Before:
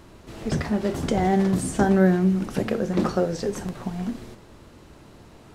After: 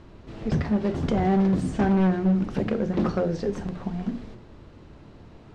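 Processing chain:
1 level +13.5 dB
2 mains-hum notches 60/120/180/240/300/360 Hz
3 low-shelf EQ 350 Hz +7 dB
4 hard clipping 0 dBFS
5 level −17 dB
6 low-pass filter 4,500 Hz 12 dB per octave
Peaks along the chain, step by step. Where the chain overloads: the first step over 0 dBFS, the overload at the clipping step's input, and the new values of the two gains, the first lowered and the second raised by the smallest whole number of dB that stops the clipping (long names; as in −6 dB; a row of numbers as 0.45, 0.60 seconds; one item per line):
+6.0, +5.5, +10.0, 0.0, −17.0, −16.5 dBFS
step 1, 10.0 dB
step 1 +3.5 dB, step 5 −7 dB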